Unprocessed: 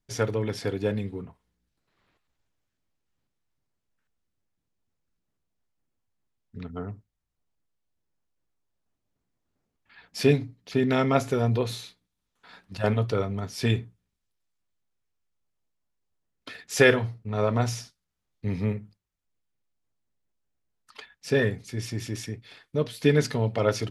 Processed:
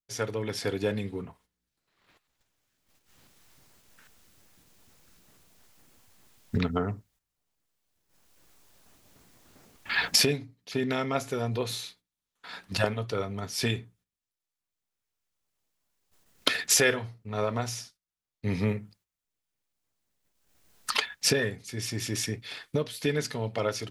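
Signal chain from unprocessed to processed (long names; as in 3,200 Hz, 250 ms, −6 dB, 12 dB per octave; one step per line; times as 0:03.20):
camcorder AGC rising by 9.6 dB per second
noise gate −52 dBFS, range −11 dB
spectral tilt +1.5 dB per octave
level −5.5 dB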